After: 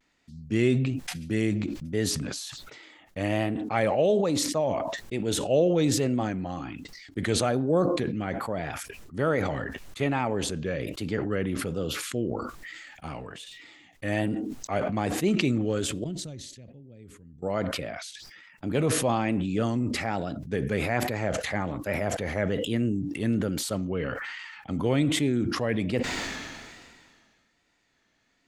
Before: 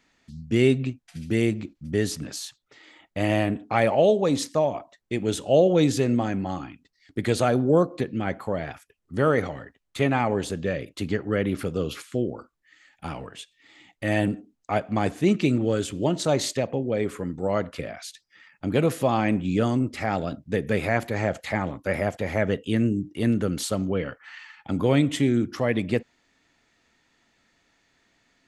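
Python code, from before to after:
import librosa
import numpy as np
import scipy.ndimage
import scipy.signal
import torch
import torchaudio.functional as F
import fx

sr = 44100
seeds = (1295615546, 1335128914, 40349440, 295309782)

y = fx.tone_stack(x, sr, knobs='10-0-1', at=(16.04, 17.42))
y = fx.vibrato(y, sr, rate_hz=1.2, depth_cents=79.0)
y = fx.sustainer(y, sr, db_per_s=30.0)
y = F.gain(torch.from_numpy(y), -4.5).numpy()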